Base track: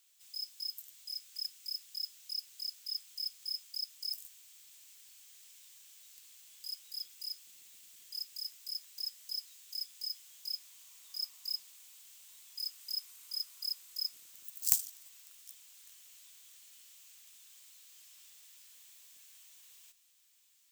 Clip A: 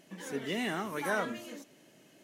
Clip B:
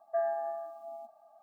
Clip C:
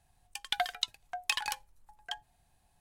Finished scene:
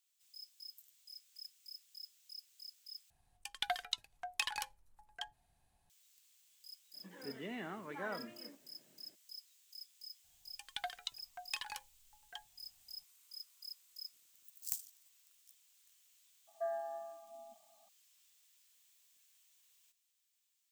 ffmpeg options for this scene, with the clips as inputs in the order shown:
-filter_complex "[3:a]asplit=2[s0][s1];[0:a]volume=0.251[s2];[1:a]lowpass=2700[s3];[2:a]asubboost=boost=10.5:cutoff=220[s4];[s2]asplit=2[s5][s6];[s5]atrim=end=3.104[s7];[s0]atrim=end=2.8,asetpts=PTS-STARTPTS,volume=0.531[s8];[s6]atrim=start=5.896[s9];[s3]atrim=end=2.23,asetpts=PTS-STARTPTS,volume=0.316,afade=t=in:d=0.02,afade=t=out:st=2.21:d=0.02,adelay=6930[s10];[s1]atrim=end=2.8,asetpts=PTS-STARTPTS,volume=0.299,afade=t=in:d=0.004:c=hsin,afade=t=out:st=2.796:d=0.004:c=hsin,adelay=10240[s11];[s4]atrim=end=1.42,asetpts=PTS-STARTPTS,volume=0.422,afade=t=in:d=0.004:c=hsin,afade=t=out:st=1.416:d=0.004:c=hsin,adelay=16470[s12];[s7][s8]acrossfade=d=0.004:c1=hsin:c2=hsin[s13];[s13][s9]acrossfade=d=0.004:c1=hsin:c2=hsin[s14];[s14][s10][s11][s12]amix=inputs=4:normalize=0"

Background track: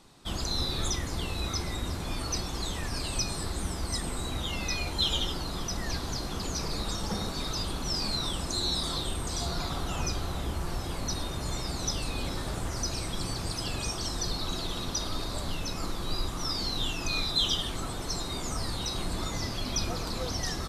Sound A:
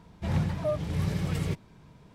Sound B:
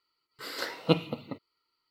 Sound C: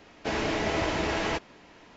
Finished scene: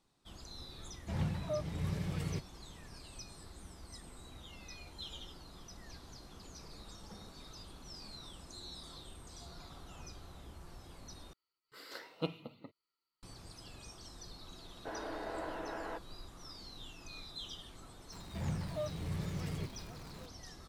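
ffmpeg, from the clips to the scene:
-filter_complex "[1:a]asplit=2[s0][s1];[0:a]volume=0.112[s2];[3:a]highpass=260,equalizer=f=300:t=q:w=4:g=6,equalizer=f=510:t=q:w=4:g=7,equalizer=f=720:t=q:w=4:g=6,equalizer=f=1000:t=q:w=4:g=6,equalizer=f=1500:t=q:w=4:g=8,equalizer=f=2300:t=q:w=4:g=-9,lowpass=f=2700:w=0.5412,lowpass=f=2700:w=1.3066[s3];[s1]aeval=exprs='val(0)+0.5*0.0141*sgn(val(0))':c=same[s4];[s2]asplit=2[s5][s6];[s5]atrim=end=11.334[s7];[2:a]atrim=end=1.9,asetpts=PTS-STARTPTS,volume=0.224[s8];[s6]atrim=start=13.226[s9];[s0]atrim=end=2.14,asetpts=PTS-STARTPTS,volume=0.398,afade=t=in:d=0.004:c=hsin,afade=t=out:st=2.136:d=0.004:c=hsin,adelay=850[s10];[s3]atrim=end=1.96,asetpts=PTS-STARTPTS,volume=0.133,afade=t=in:d=0.004:c=hsin,afade=t=out:st=1.956:d=0.004:c=hsin,adelay=643860S[s11];[s4]atrim=end=2.14,asetpts=PTS-STARTPTS,volume=0.282,afade=t=in:d=0.004:c=hsin,afade=t=out:st=2.136:d=0.004:c=hsin,adelay=799092S[s12];[s7][s8]acrossfade=d=0.004:c1=hsin:c2=hsin[s13];[s13][s9]acrossfade=d=0.004:c1=hsin:c2=hsin[s14];[s14][s10][s11][s12]amix=inputs=4:normalize=0"

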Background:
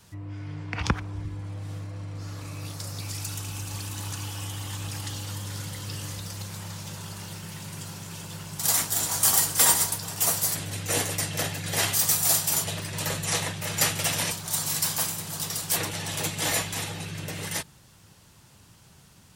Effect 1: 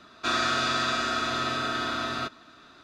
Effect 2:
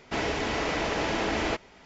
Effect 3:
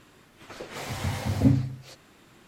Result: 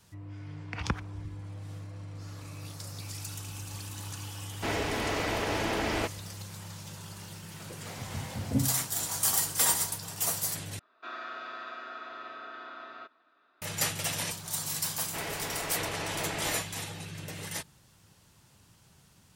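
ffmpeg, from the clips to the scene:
-filter_complex "[2:a]asplit=2[s0][s1];[0:a]volume=0.501[s2];[1:a]highpass=440,lowpass=2200[s3];[s1]equalizer=f=120:t=o:w=2.7:g=-13[s4];[s2]asplit=2[s5][s6];[s5]atrim=end=10.794[s7];[s3]atrim=end=2.83,asetpts=PTS-STARTPTS,volume=0.237[s8];[s6]atrim=start=13.616[s9];[s0]atrim=end=1.85,asetpts=PTS-STARTPTS,volume=0.75,afade=t=in:d=0.004:c=hsin,afade=t=out:st=1.846:d=0.004:c=hsin,adelay=4510[s10];[3:a]atrim=end=2.47,asetpts=PTS-STARTPTS,volume=0.398,afade=t=in:d=0.004:c=hsin,afade=t=out:st=2.466:d=0.004:c=hsin,adelay=7100[s11];[s4]atrim=end=1.85,asetpts=PTS-STARTPTS,volume=0.501,afade=t=in:d=0.004:c=hsin,afade=t=out:st=1.846:d=0.004:c=hsin,adelay=15020[s12];[s7][s8]acrossfade=d=0.004:c1=hsin:c2=hsin[s13];[s13][s9]acrossfade=d=0.004:c1=hsin:c2=hsin[s14];[s14][s10][s11][s12]amix=inputs=4:normalize=0"

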